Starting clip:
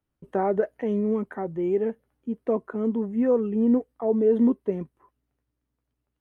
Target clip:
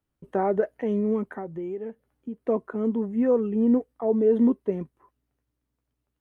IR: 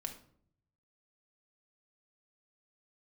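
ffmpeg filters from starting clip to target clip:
-filter_complex "[0:a]asettb=1/sr,asplit=3[a][b][c];[a]atrim=end=1.334[d];[b]atrim=start=1.33:end=2.45,asetpts=PTS-STARTPTS,afade=t=in:d=0.004:c=qsin,afade=t=out:st=1.116:d=0.004:c=qsin,acompressor=threshold=-31dB:ratio=5[e];[c]atrim=start=2.446[f];[d][e]acrossfade=d=0.004:c1=hsin:c2=qsin[g];[g][f]acrossfade=d=0.004:c1=qsin:c2=hsin"

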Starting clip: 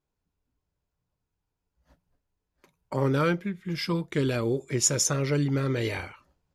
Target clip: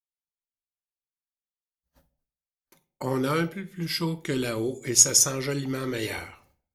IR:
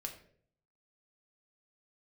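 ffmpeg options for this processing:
-filter_complex "[0:a]agate=range=-33dB:threshold=-60dB:ratio=3:detection=peak,aemphasis=mode=production:type=50fm,asetrate=42777,aresample=44100,adynamicequalizer=threshold=0.01:dfrequency=140:dqfactor=1.1:tfrequency=140:tqfactor=1.1:attack=5:release=100:ratio=0.375:range=3:mode=cutabove:tftype=bell,asplit=2[a][b];[1:a]atrim=start_sample=2205,asetrate=57330,aresample=44100[c];[b][c]afir=irnorm=-1:irlink=0,volume=3dB[d];[a][d]amix=inputs=2:normalize=0,volume=-5.5dB"

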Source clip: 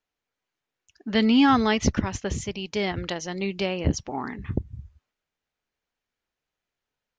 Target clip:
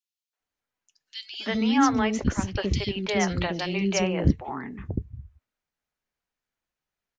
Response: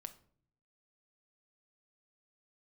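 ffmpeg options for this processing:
-filter_complex "[0:a]flanger=delay=2.6:depth=4:regen=-78:speed=0.41:shape=triangular,acrossover=split=430|3100[a][b][c];[b]adelay=330[d];[a]adelay=400[e];[e][d][c]amix=inputs=3:normalize=0,asettb=1/sr,asplit=3[f][g][h];[f]atrim=end=2.554[i];[g]atrim=start=2.55:end=4.31,asetpts=PTS-STARTPTS,afade=t=in:d=0.004:c=qsin,afade=t=out:st=1.756:d=0.004:c=qsin,acontrast=49[j];[h]atrim=start=4.306[k];[i][j]acrossfade=d=0.004:c1=hsin:c2=qsin[l];[l][k]acrossfade=d=0.004:c1=qsin:c2=hsin,volume=3dB"

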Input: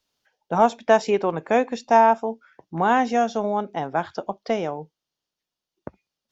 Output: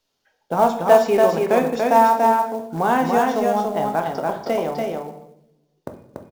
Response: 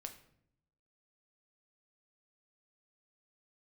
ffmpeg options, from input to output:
-filter_complex "[0:a]equalizer=f=460:w=0.56:g=3[a];[1:a]atrim=start_sample=2205,asetrate=39690,aresample=44100[b];[a][b]afir=irnorm=-1:irlink=0,asplit=2[c][d];[d]acompressor=threshold=-32dB:ratio=4,volume=-2.5dB[e];[c][e]amix=inputs=2:normalize=0,acrusher=bits=6:mode=log:mix=0:aa=0.000001,aecho=1:1:287:0.708,volume=1dB"

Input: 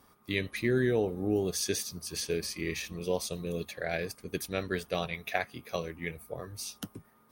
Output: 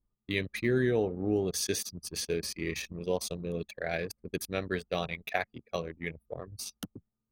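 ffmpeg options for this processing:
-af "anlmdn=0.631"

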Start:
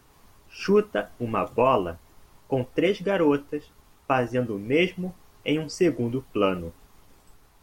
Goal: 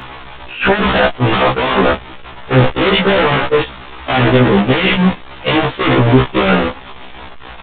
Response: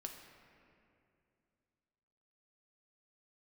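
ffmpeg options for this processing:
-filter_complex "[0:a]aeval=exprs='val(0)+0.5*0.0562*sgn(val(0))':c=same,agate=range=-21dB:threshold=-26dB:ratio=16:detection=peak,lowshelf=f=400:g=-7.5,asplit=2[a][b];[b]aeval=exprs='0.355*sin(PI/2*7.94*val(0)/0.355)':c=same,volume=-9dB[c];[a][c]amix=inputs=2:normalize=0,aresample=8000,aresample=44100,alimiter=level_in=15.5dB:limit=-1dB:release=50:level=0:latency=1,afftfilt=real='re*1.73*eq(mod(b,3),0)':imag='im*1.73*eq(mod(b,3),0)':win_size=2048:overlap=0.75,volume=-2.5dB"

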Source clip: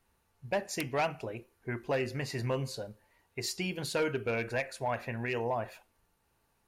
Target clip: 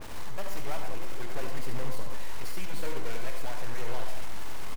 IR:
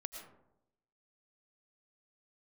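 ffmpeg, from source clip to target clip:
-filter_complex "[0:a]aeval=exprs='val(0)+0.5*0.0141*sgn(val(0))':c=same,lowpass=9.3k,asplit=2[a][b];[b]acompressor=mode=upward:threshold=-33dB:ratio=2.5,volume=-1dB[c];[a][c]amix=inputs=2:normalize=0,acrusher=bits=5:mix=0:aa=0.000001,aeval=exprs='0.168*(cos(1*acos(clip(val(0)/0.168,-1,1)))-cos(1*PI/2))+0.0119*(cos(3*acos(clip(val(0)/0.168,-1,1)))-cos(3*PI/2))+0.075*(cos(8*acos(clip(val(0)/0.168,-1,1)))-cos(8*PI/2))':c=same,atempo=1.4[d];[1:a]atrim=start_sample=2205,asetrate=70560,aresample=44100[e];[d][e]afir=irnorm=-1:irlink=0,adynamicequalizer=threshold=0.00562:dfrequency=2400:dqfactor=0.7:tfrequency=2400:tqfactor=0.7:attack=5:release=100:ratio=0.375:range=2.5:mode=cutabove:tftype=highshelf,volume=-6.5dB"

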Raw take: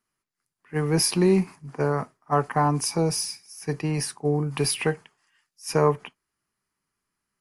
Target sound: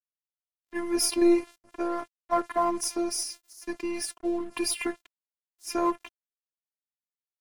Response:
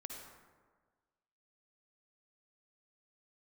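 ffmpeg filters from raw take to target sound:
-af "afftfilt=real='hypot(re,im)*cos(PI*b)':imag='0':win_size=512:overlap=0.75,aeval=exprs='0.376*(cos(1*acos(clip(val(0)/0.376,-1,1)))-cos(1*PI/2))+0.0266*(cos(4*acos(clip(val(0)/0.376,-1,1)))-cos(4*PI/2))+0.0422*(cos(5*acos(clip(val(0)/0.376,-1,1)))-cos(5*PI/2))+0.0168*(cos(7*acos(clip(val(0)/0.376,-1,1)))-cos(7*PI/2))+0.00944*(cos(8*acos(clip(val(0)/0.376,-1,1)))-cos(8*PI/2))':c=same,aeval=exprs='sgn(val(0))*max(abs(val(0))-0.00473,0)':c=same"

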